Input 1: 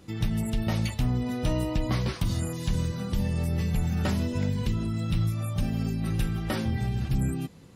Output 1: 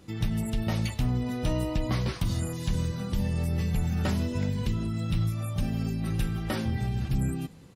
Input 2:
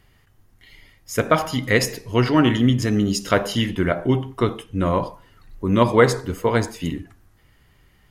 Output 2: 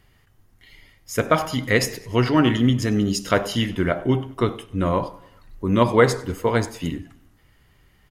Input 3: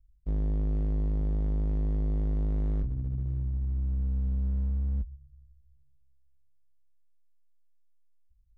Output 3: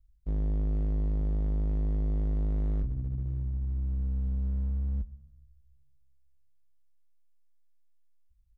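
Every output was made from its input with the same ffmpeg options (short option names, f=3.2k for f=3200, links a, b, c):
-af "aecho=1:1:98|196|294|392:0.0708|0.0411|0.0238|0.0138,volume=-1dB"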